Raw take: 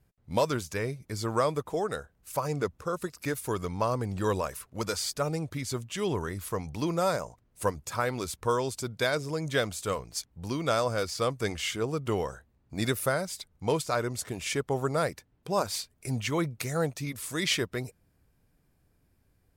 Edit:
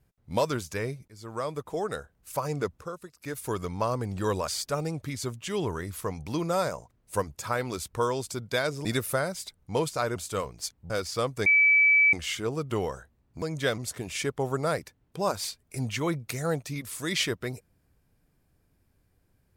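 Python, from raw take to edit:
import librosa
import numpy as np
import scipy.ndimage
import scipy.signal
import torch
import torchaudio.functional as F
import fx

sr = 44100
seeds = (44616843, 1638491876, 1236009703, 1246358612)

y = fx.edit(x, sr, fx.fade_in_from(start_s=1.08, length_s=0.8, floor_db=-19.5),
    fx.fade_down_up(start_s=2.74, length_s=0.7, db=-10.5, fade_s=0.24),
    fx.cut(start_s=4.48, length_s=0.48),
    fx.swap(start_s=9.33, length_s=0.36, other_s=12.78, other_length_s=1.31),
    fx.cut(start_s=10.43, length_s=0.5),
    fx.insert_tone(at_s=11.49, length_s=0.67, hz=2300.0, db=-16.5), tone=tone)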